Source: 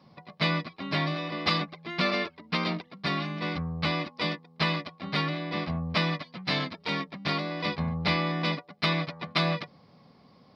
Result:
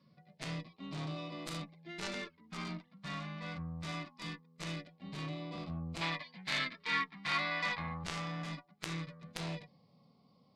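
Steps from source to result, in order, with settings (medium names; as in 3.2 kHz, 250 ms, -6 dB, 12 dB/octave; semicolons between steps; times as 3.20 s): LFO notch sine 0.22 Hz 340–1700 Hz; Chebyshev shaper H 3 -8 dB, 4 -27 dB, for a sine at -10 dBFS; harmonic-percussive split percussive -15 dB; 6.01–8.04 s: graphic EQ 125/1000/2000/4000 Hz -5/+8/+12/+7 dB; trim +7 dB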